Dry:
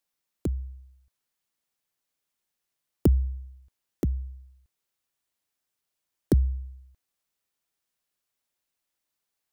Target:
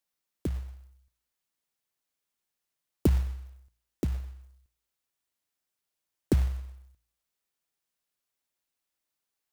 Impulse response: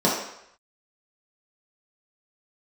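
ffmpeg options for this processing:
-af "bandreject=f=57.42:t=h:w=4,bandreject=f=114.84:t=h:w=4,bandreject=f=172.26:t=h:w=4,acrusher=bits=5:mode=log:mix=0:aa=0.000001,volume=-2.5dB"

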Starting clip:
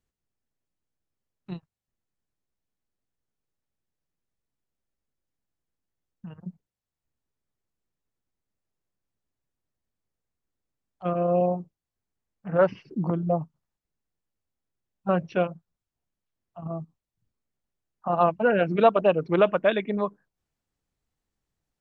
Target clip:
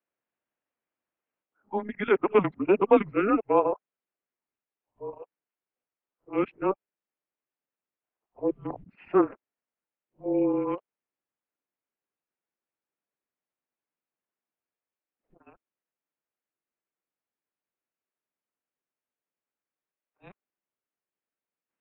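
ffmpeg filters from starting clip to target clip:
-af "areverse,highpass=f=460:t=q:w=0.5412,highpass=f=460:t=q:w=1.307,lowpass=f=3k:t=q:w=0.5176,lowpass=f=3k:t=q:w=0.7071,lowpass=f=3k:t=q:w=1.932,afreqshift=-200"

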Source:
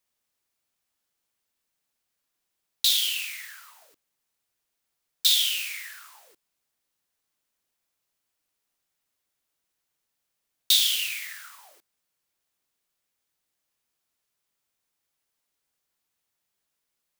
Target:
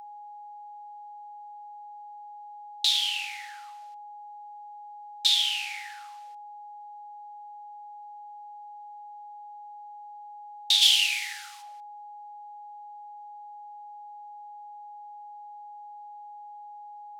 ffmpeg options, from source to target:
-filter_complex "[0:a]highpass=600,lowpass=3k,aeval=exprs='val(0)+0.0158*sin(2*PI*830*n/s)':c=same,asplit=3[a][b][c];[a]afade=t=out:st=10.81:d=0.02[d];[b]tiltshelf=f=1.3k:g=-10,afade=t=in:st=10.81:d=0.02,afade=t=out:st=11.61:d=0.02[e];[c]afade=t=in:st=11.61:d=0.02[f];[d][e][f]amix=inputs=3:normalize=0,crystalizer=i=7.5:c=0,volume=-8dB"

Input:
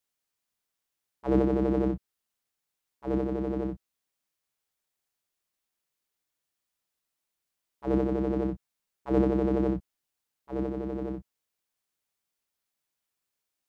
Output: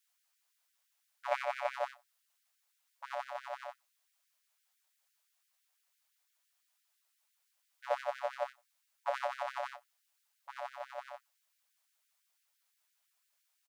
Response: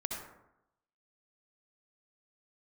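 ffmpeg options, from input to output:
-filter_complex "[0:a]asettb=1/sr,asplit=3[a][b][c];[a]atrim=end=1.314[d];[b]atrim=start=1.31:end=1.74,asetpts=PTS-STARTPTS,afade=t=in:d=0.004:c=qsin,afade=t=out:st=0.426:d=0.004:c=qsin,equalizer=f=2.3k:t=o:w=0.27:g=9.5[e];[c]atrim=start=1.736[f];[d][e]acrossfade=d=0.004:c1=hsin:c2=qsin[g];[g][f]acrossfade=d=0.004:c1=qsin:c2=hsin,asplit=2[h][i];[i]adelay=93.29,volume=-29dB,highshelf=f=4k:g=-2.1[j];[h][j]amix=inputs=2:normalize=0,afftfilt=real='re*gte(b*sr/1024,510*pow(1500/510,0.5+0.5*sin(2*PI*5.9*pts/sr)))':imag='im*gte(b*sr/1024,510*pow(1500/510,0.5+0.5*sin(2*PI*5.9*pts/sr)))':win_size=1024:overlap=0.75,volume=6dB"

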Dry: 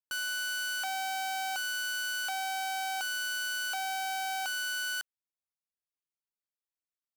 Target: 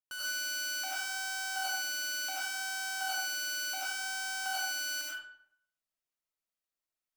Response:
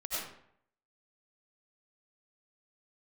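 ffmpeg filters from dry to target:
-filter_complex "[1:a]atrim=start_sample=2205[a];[0:a][a]afir=irnorm=-1:irlink=0,volume=-1.5dB"

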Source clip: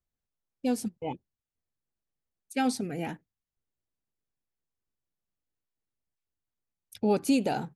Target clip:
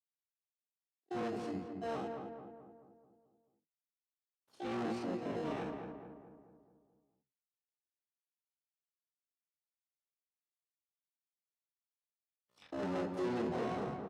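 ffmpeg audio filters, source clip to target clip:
-filter_complex "[0:a]equalizer=f=500:t=o:w=0.42:g=5,afreqshift=-28,acrossover=split=350[a][b];[b]alimiter=level_in=3dB:limit=-24dB:level=0:latency=1:release=32,volume=-3dB[c];[a][c]amix=inputs=2:normalize=0,acrusher=bits=9:mix=0:aa=0.000001,flanger=delay=16.5:depth=7.5:speed=1.4,asplit=4[d][e][f][g];[e]asetrate=22050,aresample=44100,atempo=2,volume=-6dB[h];[f]asetrate=35002,aresample=44100,atempo=1.25992,volume=-15dB[i];[g]asetrate=66075,aresample=44100,atempo=0.66742,volume=-2dB[j];[d][h][i][j]amix=inputs=4:normalize=0,bass=f=250:g=-7,treble=f=4k:g=-12,atempo=0.55,asplit=2[k][l];[l]acrusher=samples=19:mix=1:aa=0.000001,volume=-7.5dB[m];[k][m]amix=inputs=2:normalize=0,asoftclip=type=hard:threshold=-29.5dB,highpass=100,lowpass=6.1k,asplit=2[n][o];[o]adelay=217,lowpass=f=1.6k:p=1,volume=-4.5dB,asplit=2[p][q];[q]adelay=217,lowpass=f=1.6k:p=1,volume=0.54,asplit=2[r][s];[s]adelay=217,lowpass=f=1.6k:p=1,volume=0.54,asplit=2[t][u];[u]adelay=217,lowpass=f=1.6k:p=1,volume=0.54,asplit=2[v][w];[w]adelay=217,lowpass=f=1.6k:p=1,volume=0.54,asplit=2[x][y];[y]adelay=217,lowpass=f=1.6k:p=1,volume=0.54,asplit=2[z][aa];[aa]adelay=217,lowpass=f=1.6k:p=1,volume=0.54[ab];[n][p][r][t][v][x][z][ab]amix=inputs=8:normalize=0,volume=-5.5dB"

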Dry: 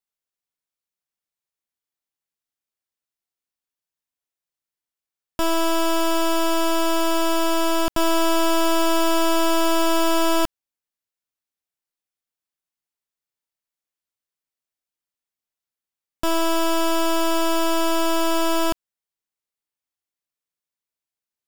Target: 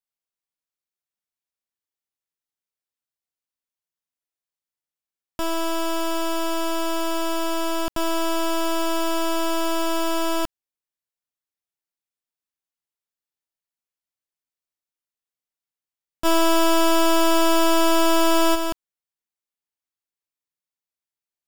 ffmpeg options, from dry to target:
-filter_complex "[0:a]asplit=3[a][b][c];[a]afade=t=out:st=16.24:d=0.02[d];[b]acontrast=83,afade=t=in:st=16.24:d=0.02,afade=t=out:st=18.54:d=0.02[e];[c]afade=t=in:st=18.54:d=0.02[f];[d][e][f]amix=inputs=3:normalize=0,volume=-4dB"

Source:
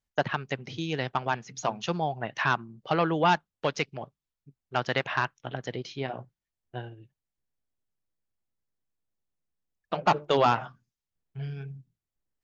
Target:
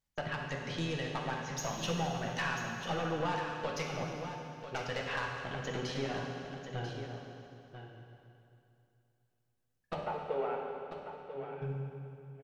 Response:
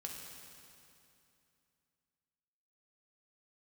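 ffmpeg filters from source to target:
-filter_complex "[0:a]acompressor=threshold=-32dB:ratio=5,aeval=exprs='(tanh(31.6*val(0)+0.35)-tanh(0.35))/31.6':c=same,asplit=3[a][b][c];[a]afade=t=out:st=9.98:d=0.02[d];[b]highpass=380,equalizer=f=430:t=q:w=4:g=6,equalizer=f=1.1k:t=q:w=4:g=-7,equalizer=f=1.7k:t=q:w=4:g=-8,lowpass=f=2.2k:w=0.5412,lowpass=f=2.2k:w=1.3066,afade=t=in:st=9.98:d=0.02,afade=t=out:st=11.61:d=0.02[e];[c]afade=t=in:st=11.61:d=0.02[f];[d][e][f]amix=inputs=3:normalize=0,aecho=1:1:992:0.335[g];[1:a]atrim=start_sample=2205[h];[g][h]afir=irnorm=-1:irlink=0,volume=6dB"

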